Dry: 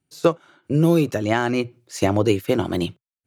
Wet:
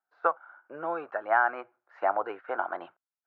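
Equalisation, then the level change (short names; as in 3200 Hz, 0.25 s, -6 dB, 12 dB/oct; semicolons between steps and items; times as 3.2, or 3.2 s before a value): resonant high-pass 760 Hz, resonance Q 3.5; ladder low-pass 1600 Hz, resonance 70%; 0.0 dB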